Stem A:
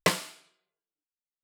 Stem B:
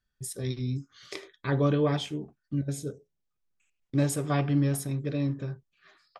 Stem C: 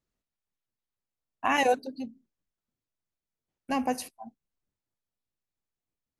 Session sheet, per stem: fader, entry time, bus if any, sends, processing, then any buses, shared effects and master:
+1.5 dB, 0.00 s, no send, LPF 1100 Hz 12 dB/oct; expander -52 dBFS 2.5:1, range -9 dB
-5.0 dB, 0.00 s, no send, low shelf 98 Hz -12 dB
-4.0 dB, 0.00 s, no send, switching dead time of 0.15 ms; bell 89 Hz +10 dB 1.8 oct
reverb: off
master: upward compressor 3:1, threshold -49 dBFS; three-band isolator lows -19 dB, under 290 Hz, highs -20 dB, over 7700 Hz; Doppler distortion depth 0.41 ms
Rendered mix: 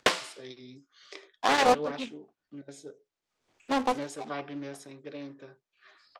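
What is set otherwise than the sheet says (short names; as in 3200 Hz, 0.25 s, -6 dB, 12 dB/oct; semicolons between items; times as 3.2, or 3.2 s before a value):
stem A: missing LPF 1100 Hz 12 dB/oct; stem C -4.0 dB -> +3.0 dB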